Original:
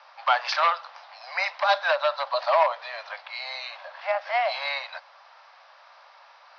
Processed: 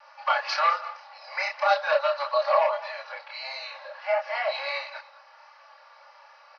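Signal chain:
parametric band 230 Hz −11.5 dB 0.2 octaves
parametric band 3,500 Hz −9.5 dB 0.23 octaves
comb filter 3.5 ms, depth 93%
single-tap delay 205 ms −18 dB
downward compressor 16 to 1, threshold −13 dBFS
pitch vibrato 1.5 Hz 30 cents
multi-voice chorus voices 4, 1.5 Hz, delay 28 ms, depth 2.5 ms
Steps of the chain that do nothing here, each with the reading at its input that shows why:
parametric band 230 Hz: nothing at its input below 480 Hz

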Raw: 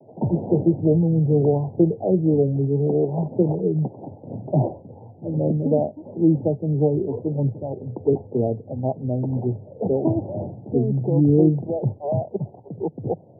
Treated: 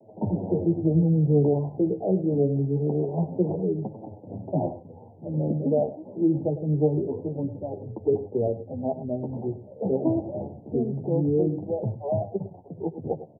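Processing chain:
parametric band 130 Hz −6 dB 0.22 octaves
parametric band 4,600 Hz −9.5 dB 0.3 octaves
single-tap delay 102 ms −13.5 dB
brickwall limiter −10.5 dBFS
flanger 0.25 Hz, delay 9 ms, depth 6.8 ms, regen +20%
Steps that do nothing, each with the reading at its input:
parametric band 4,600 Hz: nothing at its input above 850 Hz

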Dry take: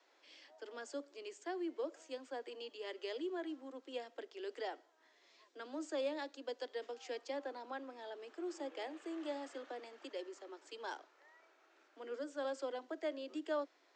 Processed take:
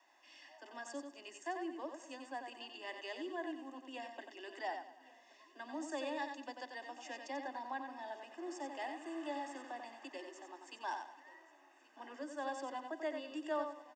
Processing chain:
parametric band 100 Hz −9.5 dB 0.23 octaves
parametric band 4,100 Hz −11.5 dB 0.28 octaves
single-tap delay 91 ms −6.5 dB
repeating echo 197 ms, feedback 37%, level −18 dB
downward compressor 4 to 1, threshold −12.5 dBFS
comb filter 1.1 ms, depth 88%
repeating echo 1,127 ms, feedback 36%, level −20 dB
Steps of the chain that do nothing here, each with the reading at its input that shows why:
parametric band 100 Hz: nothing at its input below 210 Hz
downward compressor, threshold −12.5 dBFS: peak of its input −27.0 dBFS

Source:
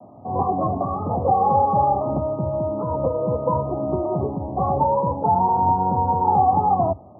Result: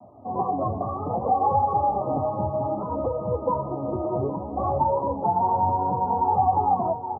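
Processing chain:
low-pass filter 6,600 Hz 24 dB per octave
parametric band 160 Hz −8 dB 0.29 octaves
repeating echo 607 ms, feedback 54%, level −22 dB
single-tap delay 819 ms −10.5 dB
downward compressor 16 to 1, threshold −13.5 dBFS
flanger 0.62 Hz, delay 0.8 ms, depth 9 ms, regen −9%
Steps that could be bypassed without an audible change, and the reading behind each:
low-pass filter 6,600 Hz: nothing at its input above 1,300 Hz

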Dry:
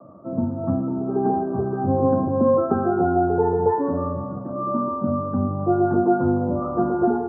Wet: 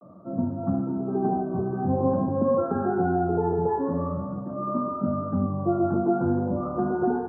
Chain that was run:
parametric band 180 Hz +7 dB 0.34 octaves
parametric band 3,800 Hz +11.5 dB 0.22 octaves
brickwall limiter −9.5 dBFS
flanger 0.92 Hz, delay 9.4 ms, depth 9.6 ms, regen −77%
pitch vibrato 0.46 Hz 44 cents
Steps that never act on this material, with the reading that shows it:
parametric band 3,800 Hz: nothing at its input above 1,400 Hz

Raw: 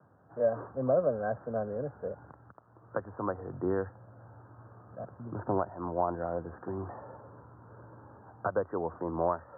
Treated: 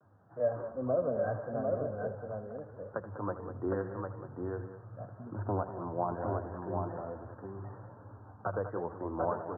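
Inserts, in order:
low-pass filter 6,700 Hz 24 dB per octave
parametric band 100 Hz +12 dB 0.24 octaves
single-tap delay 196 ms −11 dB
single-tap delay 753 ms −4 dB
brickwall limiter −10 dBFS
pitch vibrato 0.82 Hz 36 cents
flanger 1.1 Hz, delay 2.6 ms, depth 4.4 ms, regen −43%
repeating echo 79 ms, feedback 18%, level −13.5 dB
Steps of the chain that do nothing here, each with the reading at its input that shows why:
low-pass filter 6,700 Hz: nothing at its input above 1,700 Hz
brickwall limiter −10 dBFS: peak of its input −14.5 dBFS

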